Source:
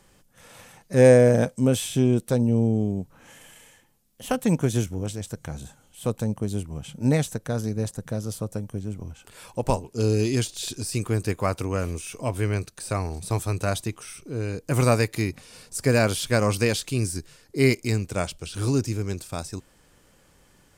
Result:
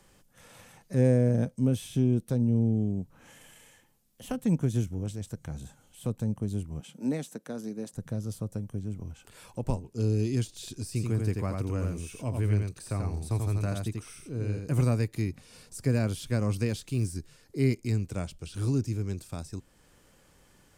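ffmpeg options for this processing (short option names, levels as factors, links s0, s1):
-filter_complex "[0:a]asettb=1/sr,asplit=3[s0][s1][s2];[s0]atrim=end=1.274[s3];[s1]atrim=start=1.27:end=2.77,asetpts=PTS-STARTPTS,afade=t=in:d=0.004:c=qsin,afade=t=out:st=1.496:d=0.004:c=qsin,bandreject=f=7600:w=10[s4];[s2]atrim=start=2.766[s5];[s3][s4]acrossfade=d=0.004:c1=hsin:c2=qsin[s6];[s6][s5]acrossfade=d=0.004:c1=qsin:c2=hsin,asettb=1/sr,asplit=3[s7][s8][s9];[s7]atrim=end=6.804[s10];[s8]atrim=start=6.8:end=7.93,asetpts=PTS-STARTPTS,afade=t=in:d=0.004:c=qsin,afade=t=out:st=1.126:d=0.004:c=qsin,highpass=f=210:w=0.5412,highpass=f=210:w=1.3066[s11];[s9]atrim=start=7.926[s12];[s10][s11]acrossfade=d=0.004:c1=hsin:c2=qsin[s13];[s13][s12]acrossfade=d=0.004:c1=qsin:c2=hsin,asettb=1/sr,asplit=3[s14][s15][s16];[s14]atrim=end=10.874[s17];[s15]atrim=start=10.87:end=14.81,asetpts=PTS-STARTPTS,afade=t=in:d=0.004:c=qsin,afade=t=out:st=3.936:d=0.004:c=qsin,aecho=1:1:87:0.631,atrim=end_sample=173754[s18];[s16]atrim=start=14.806[s19];[s17][s18]acrossfade=d=0.004:c1=hsin:c2=qsin[s20];[s20][s19]acrossfade=d=0.004:c1=qsin:c2=hsin,asettb=1/sr,asplit=3[s21][s22][s23];[s21]atrim=end=16.684[s24];[s22]atrim=start=16.68:end=17.14,asetpts=PTS-STARTPTS,afade=t=in:d=0.004:c=qsin,afade=t=out:st=0.456:d=0.004:c=qsin,acrusher=bits=7:mode=log:mix=0:aa=0.000001[s25];[s23]atrim=start=17.136[s26];[s24][s25]acrossfade=d=0.004:c1=hsin:c2=qsin[s27];[s27][s26]acrossfade=d=0.004:c1=qsin:c2=hsin,acrossover=split=310[s28][s29];[s29]acompressor=threshold=0.00224:ratio=1.5[s30];[s28][s30]amix=inputs=2:normalize=0,volume=0.75"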